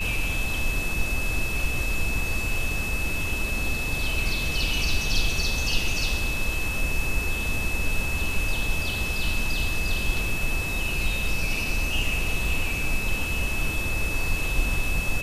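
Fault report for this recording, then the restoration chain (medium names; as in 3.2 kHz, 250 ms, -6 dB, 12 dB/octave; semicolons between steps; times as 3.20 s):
whine 2.6 kHz -29 dBFS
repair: band-stop 2.6 kHz, Q 30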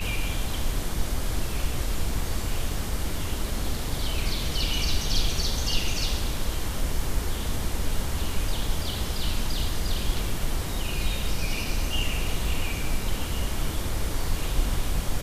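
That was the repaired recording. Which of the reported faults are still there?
nothing left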